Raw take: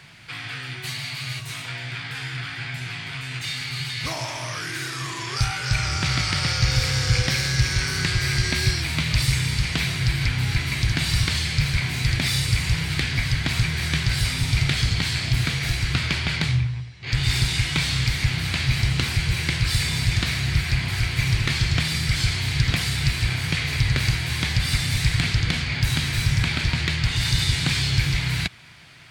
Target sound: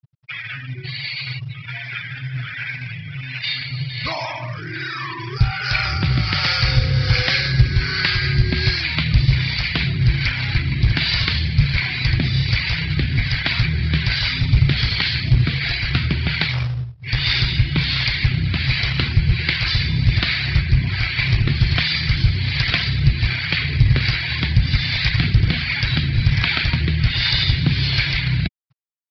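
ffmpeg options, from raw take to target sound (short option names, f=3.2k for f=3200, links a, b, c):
-filter_complex "[0:a]afftfilt=real='re*gte(hypot(re,im),0.0398)':imag='im*gte(hypot(re,im),0.0398)':win_size=1024:overlap=0.75,aresample=11025,acrusher=bits=4:mode=log:mix=0:aa=0.000001,aresample=44100,acrossover=split=490[a][b];[a]aeval=exprs='val(0)*(1-0.7/2+0.7/2*cos(2*PI*1.3*n/s))':c=same[c];[b]aeval=exprs='val(0)*(1-0.7/2-0.7/2*cos(2*PI*1.3*n/s))':c=same[d];[c][d]amix=inputs=2:normalize=0,volume=7.5dB"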